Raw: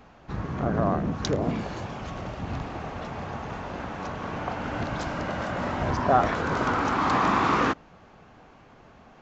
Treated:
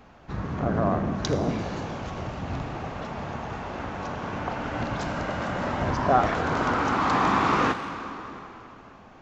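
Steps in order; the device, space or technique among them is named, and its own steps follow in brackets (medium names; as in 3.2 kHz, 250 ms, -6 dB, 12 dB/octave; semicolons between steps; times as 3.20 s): saturated reverb return (on a send at -5 dB: reverberation RT60 3.0 s, pre-delay 30 ms + saturation -23.5 dBFS, distortion -11 dB)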